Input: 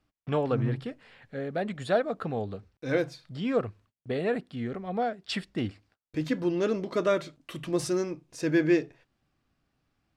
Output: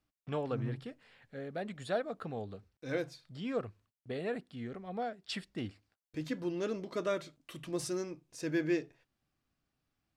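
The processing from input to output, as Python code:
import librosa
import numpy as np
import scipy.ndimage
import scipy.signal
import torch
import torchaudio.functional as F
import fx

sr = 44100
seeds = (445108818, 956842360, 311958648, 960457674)

y = fx.high_shelf(x, sr, hz=4200.0, db=5.5)
y = F.gain(torch.from_numpy(y), -8.5).numpy()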